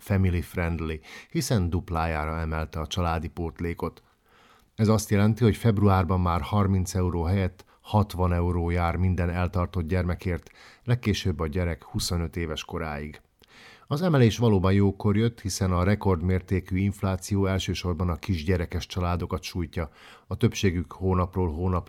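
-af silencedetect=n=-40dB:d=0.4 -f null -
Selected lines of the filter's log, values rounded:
silence_start: 3.98
silence_end: 4.78 | silence_duration: 0.80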